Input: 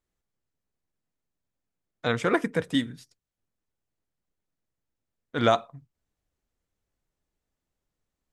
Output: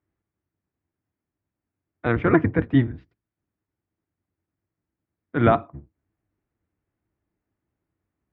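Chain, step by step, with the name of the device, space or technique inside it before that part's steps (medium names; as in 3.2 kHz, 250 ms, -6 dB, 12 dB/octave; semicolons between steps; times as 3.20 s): sub-octave bass pedal (octave divider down 1 oct, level +1 dB; cabinet simulation 69–2300 Hz, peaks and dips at 96 Hz +5 dB, 320 Hz +8 dB, 510 Hz -4 dB); trim +3 dB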